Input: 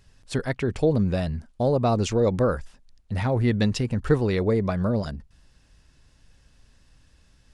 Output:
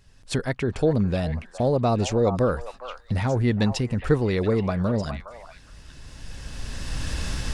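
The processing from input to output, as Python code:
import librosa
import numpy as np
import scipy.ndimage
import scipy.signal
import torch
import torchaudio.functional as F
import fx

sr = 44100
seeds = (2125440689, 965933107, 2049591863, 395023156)

p1 = fx.recorder_agc(x, sr, target_db=-17.5, rise_db_per_s=14.0, max_gain_db=30)
y = p1 + fx.echo_stepped(p1, sr, ms=412, hz=960.0, octaves=1.4, feedback_pct=70, wet_db=-5.5, dry=0)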